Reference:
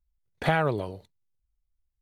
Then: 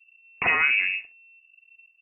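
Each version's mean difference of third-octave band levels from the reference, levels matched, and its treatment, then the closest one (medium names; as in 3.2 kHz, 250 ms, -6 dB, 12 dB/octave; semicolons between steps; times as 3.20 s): 16.0 dB: bass shelf 130 Hz +8.5 dB; peak limiter -20.5 dBFS, peak gain reduction 9.5 dB; early reflections 39 ms -16 dB, 64 ms -14 dB; frequency inversion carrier 2.7 kHz; trim +7 dB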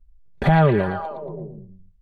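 6.0 dB: tilt EQ -3 dB/octave; comb 5.1 ms, depth 55%; peak limiter -13 dBFS, peak gain reduction 7 dB; repeats whose band climbs or falls 115 ms, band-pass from 3.5 kHz, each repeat -0.7 oct, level -2 dB; trim +5.5 dB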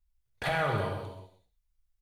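8.5 dB: peaking EQ 310 Hz -9.5 dB 1.4 oct; peak limiter -21 dBFS, peak gain reduction 7.5 dB; on a send: delay 126 ms -13 dB; on the sum: gated-style reverb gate 420 ms falling, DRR -0.5 dB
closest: second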